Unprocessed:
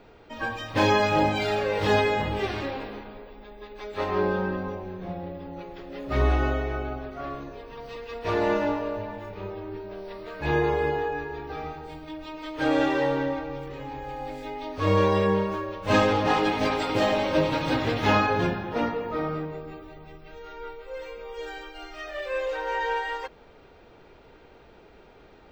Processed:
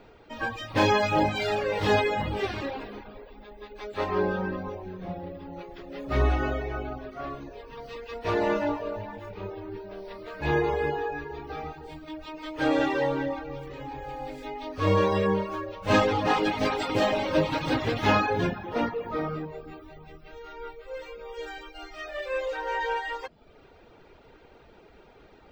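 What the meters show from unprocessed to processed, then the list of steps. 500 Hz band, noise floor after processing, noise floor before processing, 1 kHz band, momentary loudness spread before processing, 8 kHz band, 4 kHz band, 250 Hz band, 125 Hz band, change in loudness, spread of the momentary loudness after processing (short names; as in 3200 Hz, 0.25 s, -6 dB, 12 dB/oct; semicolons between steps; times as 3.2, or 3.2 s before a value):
-1.5 dB, -54 dBFS, -52 dBFS, -1.5 dB, 18 LU, -1.0 dB, -1.5 dB, -1.5 dB, -1.5 dB, -1.5 dB, 18 LU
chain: reverb removal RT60 0.58 s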